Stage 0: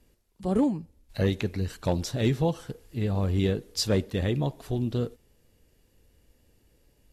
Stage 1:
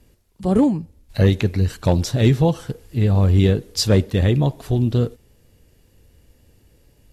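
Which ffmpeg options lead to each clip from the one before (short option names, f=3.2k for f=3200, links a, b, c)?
-af "equalizer=f=99:w=0.96:g=5,volume=7dB"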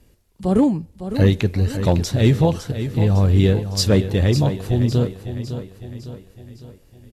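-af "aecho=1:1:556|1112|1668|2224|2780:0.299|0.146|0.0717|0.0351|0.0172"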